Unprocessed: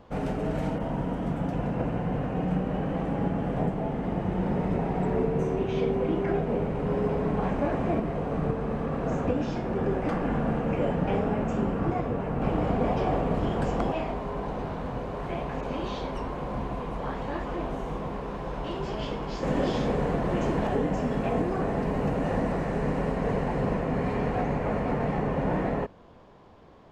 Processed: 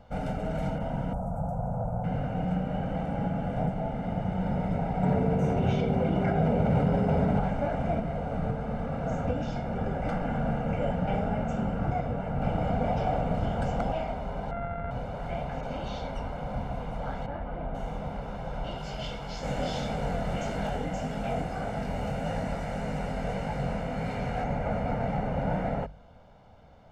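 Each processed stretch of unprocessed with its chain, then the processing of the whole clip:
1.13–2.04 Butterworth band-stop 3500 Hz, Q 0.58 + fixed phaser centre 770 Hz, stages 4 + fast leveller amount 50%
5.03–7.39 HPF 63 Hz + low shelf 430 Hz +4 dB + fast leveller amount 100%
14.51–14.91 sample sorter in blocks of 64 samples + LPF 1800 Hz 24 dB/oct
17.26–17.75 CVSD 64 kbps + air absorption 460 m
18.78–24.44 high shelf 2100 Hz +9 dB + chorus 1.7 Hz, delay 18.5 ms, depth 5.6 ms
whole clip: low shelf 130 Hz +4 dB; notches 50/100/150 Hz; comb 1.4 ms, depth 71%; gain -4 dB

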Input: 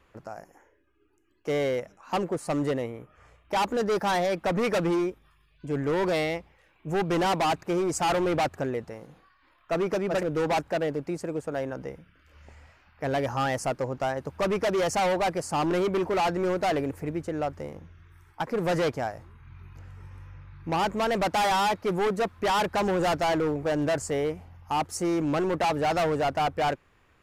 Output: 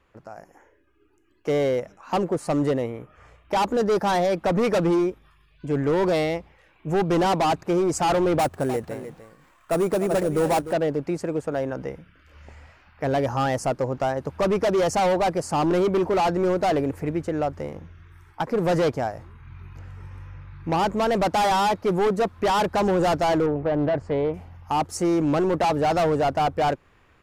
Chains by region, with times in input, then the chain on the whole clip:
8.39–10.73 sample-rate reducer 9500 Hz + echo 0.301 s -12 dB
23.46–24.34 air absorption 380 m + Doppler distortion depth 0.27 ms
whole clip: high shelf 6700 Hz -5.5 dB; AGC gain up to 7 dB; dynamic EQ 2100 Hz, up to -5 dB, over -32 dBFS, Q 0.77; gain -2 dB

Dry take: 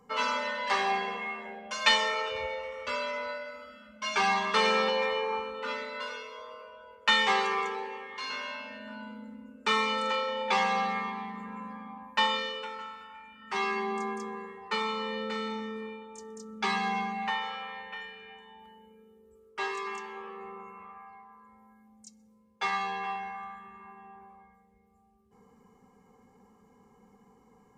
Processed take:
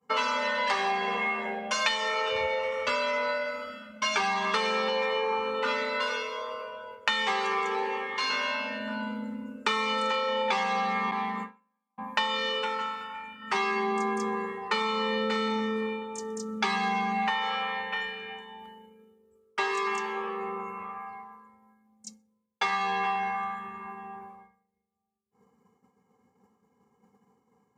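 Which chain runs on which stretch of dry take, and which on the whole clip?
11.11–11.98 gate with hold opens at -30 dBFS, closes at -35 dBFS + HPF 270 Hz 6 dB/oct
whole clip: expander -49 dBFS; HPF 81 Hz 24 dB/oct; compressor 12:1, threshold -33 dBFS; gain +9 dB

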